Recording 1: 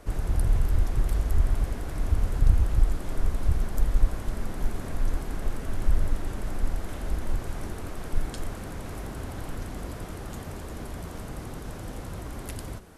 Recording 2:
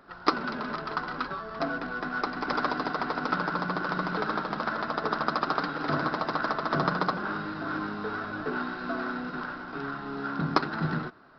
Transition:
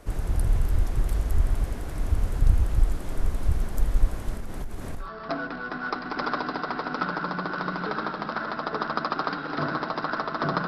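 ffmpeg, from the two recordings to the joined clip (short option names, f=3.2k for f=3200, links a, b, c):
-filter_complex "[0:a]asettb=1/sr,asplit=3[a][b][c];[a]atrim=end=4.374[d];[b]atrim=start=4.37:end=5.1,asetpts=PTS-STARTPTS,afade=t=in:d=0.004:c=qsin,afade=t=out:st=0.726:d=0.004:c=qsin,acompressor=threshold=-27dB:ratio=10:attack=3.2:release=140:knee=1:detection=peak[e];[c]atrim=start=5.096[f];[d][e]acrossfade=d=0.004:c1=hsin:c2=qsin[g];[g][f]acrossfade=d=0.004:c1=qsin:c2=hsin,apad=whole_dur=10.67,atrim=end=10.67,atrim=end=5.1,asetpts=PTS-STARTPTS[h];[1:a]atrim=start=1.29:end=6.98,asetpts=PTS-STARTPTS[i];[h][i]acrossfade=d=0.12:c1=tri:c2=tri"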